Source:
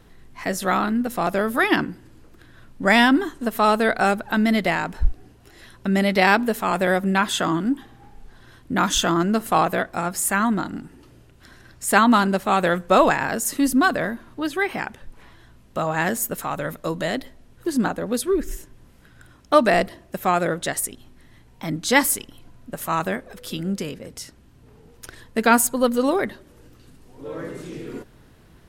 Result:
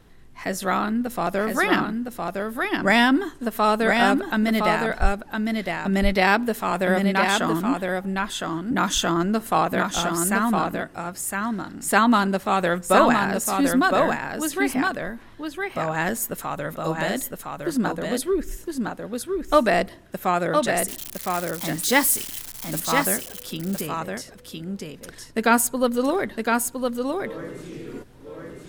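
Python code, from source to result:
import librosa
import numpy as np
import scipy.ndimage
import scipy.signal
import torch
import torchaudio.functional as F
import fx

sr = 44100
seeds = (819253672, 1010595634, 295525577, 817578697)

y = fx.crossing_spikes(x, sr, level_db=-20.0, at=(20.88, 22.8))
y = y + 10.0 ** (-4.0 / 20.0) * np.pad(y, (int(1011 * sr / 1000.0), 0))[:len(y)]
y = y * 10.0 ** (-2.0 / 20.0)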